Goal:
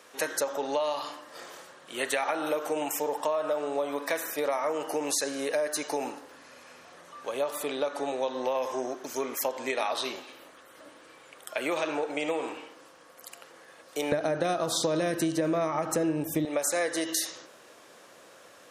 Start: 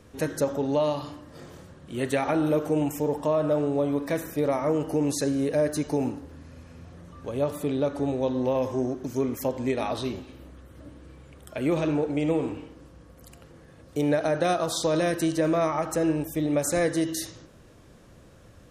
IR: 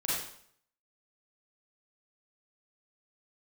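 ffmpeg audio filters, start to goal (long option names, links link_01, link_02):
-af "asetnsamples=nb_out_samples=441:pad=0,asendcmd='14.12 highpass f 140;16.45 highpass f 590',highpass=730,acompressor=threshold=-32dB:ratio=6,volume=7dB"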